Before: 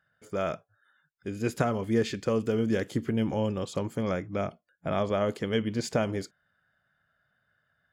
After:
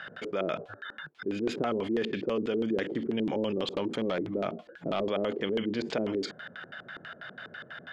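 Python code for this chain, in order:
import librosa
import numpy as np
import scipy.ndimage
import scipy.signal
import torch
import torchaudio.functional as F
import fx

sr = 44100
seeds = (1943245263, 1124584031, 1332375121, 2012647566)

y = scipy.signal.sosfilt(scipy.signal.butter(2, 240.0, 'highpass', fs=sr, output='sos'), x)
y = fx.clip_hard(y, sr, threshold_db=-23.5, at=(3.52, 5.11))
y = fx.filter_lfo_lowpass(y, sr, shape='square', hz=6.1, low_hz=370.0, high_hz=3300.0, q=2.3)
y = fx.env_flatten(y, sr, amount_pct=70)
y = F.gain(torch.from_numpy(y), -7.0).numpy()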